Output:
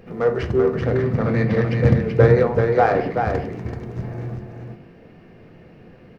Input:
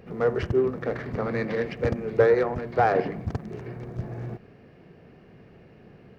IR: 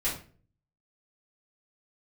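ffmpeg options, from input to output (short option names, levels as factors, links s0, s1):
-filter_complex "[0:a]asettb=1/sr,asplit=3[s0][s1][s2];[s0]atrim=end=0.734[s3];[s1]atrim=start=0.73:end=2.49,asetpts=PTS-STARTPTS,afade=t=in:d=0.004:c=qsin,afade=t=out:st=1.756:d=0.004:c=qsin,equalizer=f=130:t=o:w=1.2:g=12[s4];[s2]atrim=start=2.486[s5];[s3][s4]acrossfade=d=0.004:c1=hsin:c2=qsin[s6];[s6][s5]acrossfade=d=0.004:c1=qsin:c2=hsin,aecho=1:1:383:0.562,asplit=2[s7][s8];[1:a]atrim=start_sample=2205[s9];[s8][s9]afir=irnorm=-1:irlink=0,volume=0.237[s10];[s7][s10]amix=inputs=2:normalize=0,volume=1.19"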